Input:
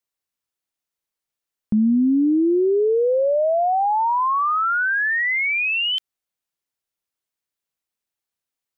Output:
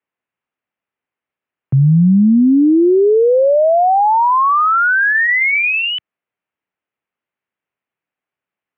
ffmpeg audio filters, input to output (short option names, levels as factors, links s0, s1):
-filter_complex "[0:a]asplit=3[s0][s1][s2];[s0]afade=t=out:st=5.01:d=0.02[s3];[s1]bandreject=f=164:t=h:w=4,bandreject=f=328:t=h:w=4,bandreject=f=492:t=h:w=4,bandreject=f=656:t=h:w=4,bandreject=f=820:t=h:w=4,bandreject=f=984:t=h:w=4,bandreject=f=1148:t=h:w=4,bandreject=f=1312:t=h:w=4,bandreject=f=1476:t=h:w=4,bandreject=f=1640:t=h:w=4,bandreject=f=1804:t=h:w=4,bandreject=f=1968:t=h:w=4,bandreject=f=2132:t=h:w=4,bandreject=f=2296:t=h:w=4,bandreject=f=2460:t=h:w=4,bandreject=f=2624:t=h:w=4,bandreject=f=2788:t=h:w=4,bandreject=f=2952:t=h:w=4,bandreject=f=3116:t=h:w=4,bandreject=f=3280:t=h:w=4,bandreject=f=3444:t=h:w=4,bandreject=f=3608:t=h:w=4,bandreject=f=3772:t=h:w=4,bandreject=f=3936:t=h:w=4,bandreject=f=4100:t=h:w=4,bandreject=f=4264:t=h:w=4,bandreject=f=4428:t=h:w=4,bandreject=f=4592:t=h:w=4,bandreject=f=4756:t=h:w=4,bandreject=f=4920:t=h:w=4,bandreject=f=5084:t=h:w=4,bandreject=f=5248:t=h:w=4,afade=t=in:st=5.01:d=0.02,afade=t=out:st=5.9:d=0.02[s4];[s2]afade=t=in:st=5.9:d=0.02[s5];[s3][s4][s5]amix=inputs=3:normalize=0,highpass=f=180:t=q:w=0.5412,highpass=f=180:t=q:w=1.307,lowpass=f=2800:t=q:w=0.5176,lowpass=f=2800:t=q:w=0.7071,lowpass=f=2800:t=q:w=1.932,afreqshift=-79,volume=2.37"